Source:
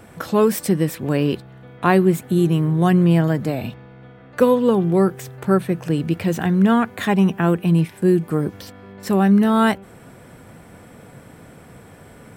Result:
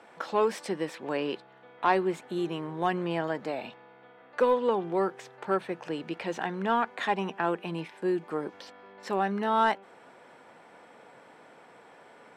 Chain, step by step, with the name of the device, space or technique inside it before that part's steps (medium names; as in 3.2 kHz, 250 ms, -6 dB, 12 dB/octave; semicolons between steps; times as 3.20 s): intercom (band-pass 440–4800 Hz; peaking EQ 890 Hz +6 dB 0.28 oct; saturation -7 dBFS, distortion -22 dB); trim -5.5 dB